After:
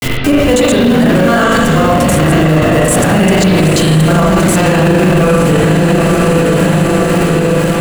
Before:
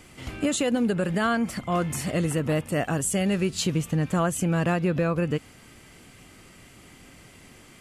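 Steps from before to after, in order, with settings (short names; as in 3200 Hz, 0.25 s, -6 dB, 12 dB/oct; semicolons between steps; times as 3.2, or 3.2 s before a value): slices in reverse order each 80 ms, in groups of 3; gate with hold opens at -38 dBFS; high shelf 3900 Hz +3.5 dB; bit-crush 7-bit; in parallel at -5 dB: Schmitt trigger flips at -27.5 dBFS; on the sum: diffused feedback echo 0.937 s, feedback 56%, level -8.5 dB; spring tank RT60 1.5 s, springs 38/58 ms, chirp 20 ms, DRR -5 dB; maximiser +22.5 dB; gain -1 dB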